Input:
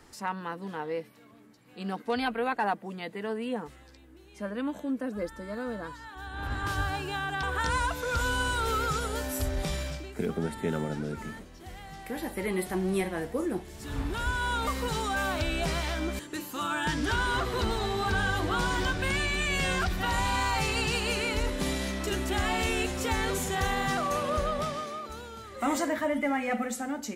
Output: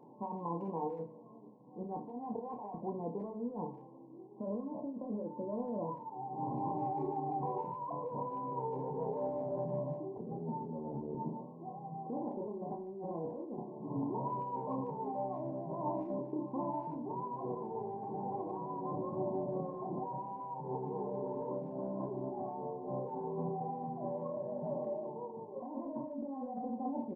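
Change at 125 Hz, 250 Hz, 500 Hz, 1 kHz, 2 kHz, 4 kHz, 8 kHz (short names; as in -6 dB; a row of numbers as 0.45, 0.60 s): -10.0 dB, -6.5 dB, -5.5 dB, -7.5 dB, under -40 dB, under -40 dB, under -40 dB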